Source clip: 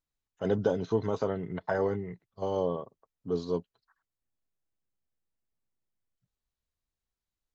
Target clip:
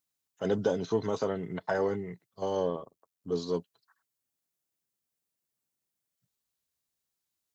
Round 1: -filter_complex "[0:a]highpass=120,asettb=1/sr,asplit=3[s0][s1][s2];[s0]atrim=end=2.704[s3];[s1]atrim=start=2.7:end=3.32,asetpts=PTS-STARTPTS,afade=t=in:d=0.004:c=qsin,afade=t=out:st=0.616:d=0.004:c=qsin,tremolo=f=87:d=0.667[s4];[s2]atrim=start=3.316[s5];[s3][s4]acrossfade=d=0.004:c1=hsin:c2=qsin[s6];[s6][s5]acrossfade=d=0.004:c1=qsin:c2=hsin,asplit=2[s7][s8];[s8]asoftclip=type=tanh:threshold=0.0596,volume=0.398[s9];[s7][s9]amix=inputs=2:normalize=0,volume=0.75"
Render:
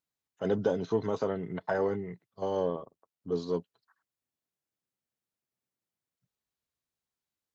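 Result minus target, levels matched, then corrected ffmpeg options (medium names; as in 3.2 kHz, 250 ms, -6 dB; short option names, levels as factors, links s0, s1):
8 kHz band -7.0 dB
-filter_complex "[0:a]highpass=120,highshelf=f=4500:g=11,asettb=1/sr,asplit=3[s0][s1][s2];[s0]atrim=end=2.704[s3];[s1]atrim=start=2.7:end=3.32,asetpts=PTS-STARTPTS,afade=t=in:d=0.004:c=qsin,afade=t=out:st=0.616:d=0.004:c=qsin,tremolo=f=87:d=0.667[s4];[s2]atrim=start=3.316[s5];[s3][s4]acrossfade=d=0.004:c1=hsin:c2=qsin[s6];[s6][s5]acrossfade=d=0.004:c1=qsin:c2=hsin,asplit=2[s7][s8];[s8]asoftclip=type=tanh:threshold=0.0596,volume=0.398[s9];[s7][s9]amix=inputs=2:normalize=0,volume=0.75"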